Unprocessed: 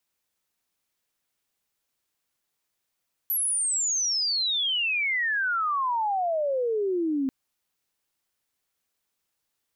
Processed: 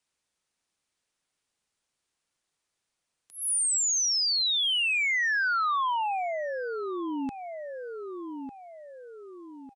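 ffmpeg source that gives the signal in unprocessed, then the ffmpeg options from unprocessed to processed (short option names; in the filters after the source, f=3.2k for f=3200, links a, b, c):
-f lavfi -i "aevalsrc='0.0708*sin(2*PI*12000*3.99/log(260/12000)*(exp(log(260/12000)*t/3.99)-1))':d=3.99:s=44100"
-filter_complex "[0:a]asplit=2[a][b];[b]adelay=1200,lowpass=f=1.4k:p=1,volume=-11dB,asplit=2[c][d];[d]adelay=1200,lowpass=f=1.4k:p=1,volume=0.42,asplit=2[e][f];[f]adelay=1200,lowpass=f=1.4k:p=1,volume=0.42,asplit=2[g][h];[h]adelay=1200,lowpass=f=1.4k:p=1,volume=0.42[i];[a][c][e][g][i]amix=inputs=5:normalize=0,aresample=22050,aresample=44100,acrossover=split=220|870[j][k][l];[k]acompressor=threshold=-36dB:ratio=6[m];[j][m][l]amix=inputs=3:normalize=0"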